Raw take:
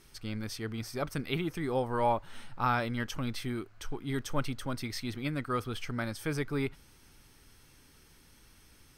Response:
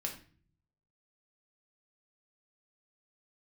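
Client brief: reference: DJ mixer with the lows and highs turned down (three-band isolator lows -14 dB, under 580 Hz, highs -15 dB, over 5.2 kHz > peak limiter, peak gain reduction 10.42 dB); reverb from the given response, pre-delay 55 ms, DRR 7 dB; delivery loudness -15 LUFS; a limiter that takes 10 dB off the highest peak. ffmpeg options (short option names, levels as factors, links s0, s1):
-filter_complex "[0:a]alimiter=level_in=1.12:limit=0.0631:level=0:latency=1,volume=0.891,asplit=2[s0][s1];[1:a]atrim=start_sample=2205,adelay=55[s2];[s1][s2]afir=irnorm=-1:irlink=0,volume=0.422[s3];[s0][s3]amix=inputs=2:normalize=0,acrossover=split=580 5200:gain=0.2 1 0.178[s4][s5][s6];[s4][s5][s6]amix=inputs=3:normalize=0,volume=31.6,alimiter=limit=0.631:level=0:latency=1"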